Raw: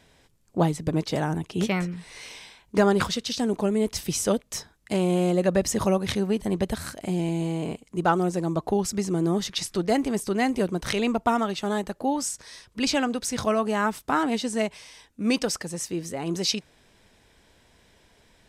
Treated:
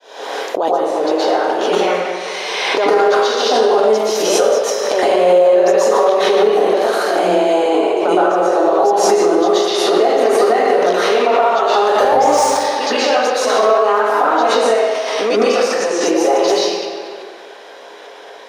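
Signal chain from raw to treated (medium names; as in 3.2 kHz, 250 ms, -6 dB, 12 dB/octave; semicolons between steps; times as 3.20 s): fade-in on the opening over 2.85 s; 15.62–16.03 s: low-pass that closes with the level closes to 2.8 kHz, closed at -25 dBFS; high-pass 460 Hz 24 dB/octave; 4.26–5.02 s: waveshaping leveller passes 1; compression 6:1, threshold -37 dBFS, peak gain reduction 19 dB; 11.83–12.41 s: waveshaping leveller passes 3; reverberation RT60 2.2 s, pre-delay 112 ms, DRR -12.5 dB; loudness maximiser +8 dB; swell ahead of each attack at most 25 dB/s; trim -3 dB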